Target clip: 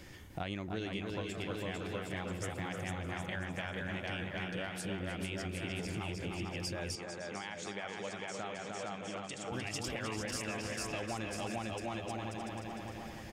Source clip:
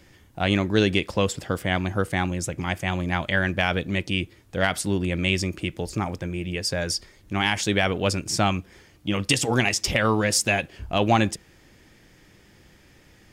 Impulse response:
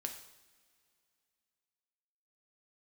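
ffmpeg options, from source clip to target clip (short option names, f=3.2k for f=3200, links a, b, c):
-filter_complex "[0:a]aecho=1:1:450|765|985.5|1140|1248:0.631|0.398|0.251|0.158|0.1,alimiter=limit=-12.5dB:level=0:latency=1:release=428,asplit=2[a][b];[b]adelay=303,lowpass=f=4.8k:p=1,volume=-5.5dB,asplit=2[c][d];[d]adelay=303,lowpass=f=4.8k:p=1,volume=0.44,asplit=2[e][f];[f]adelay=303,lowpass=f=4.8k:p=1,volume=0.44,asplit=2[g][h];[h]adelay=303,lowpass=f=4.8k:p=1,volume=0.44,asplit=2[i][j];[j]adelay=303,lowpass=f=4.8k:p=1,volume=0.44[k];[a][c][e][g][i][k]amix=inputs=6:normalize=0,acompressor=threshold=-41dB:ratio=4,asettb=1/sr,asplit=3[l][m][n];[l]atrim=end=6.954[o];[m]atrim=start=6.95:end=9.52,asetpts=PTS-STARTPTS,afade=t=in:d=0.004:c=qsin,afade=t=out:st=2.566:d=0.004:c=qsin,highpass=210,equalizer=f=290:t=q:w=4:g=-7,equalizer=f=2.8k:t=q:w=4:g=-5,equalizer=f=5k:t=q:w=4:g=-10,lowpass=f=8k:w=0.5412,lowpass=f=8k:w=1.3066[p];[n]atrim=start=9.516[q];[o][p]acrossfade=d=0.004:c1=hsin:c2=qsin[r];[r][q]acrossfade=d=0.004:c1=qsin:c2=hsin,volume=1.5dB"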